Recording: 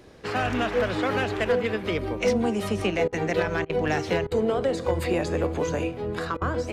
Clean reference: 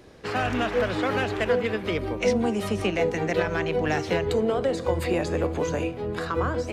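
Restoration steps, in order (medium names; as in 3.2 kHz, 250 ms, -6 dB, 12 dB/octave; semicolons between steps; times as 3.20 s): clip repair -14.5 dBFS; interpolate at 3.08/3.65/4.27/6.37 s, 44 ms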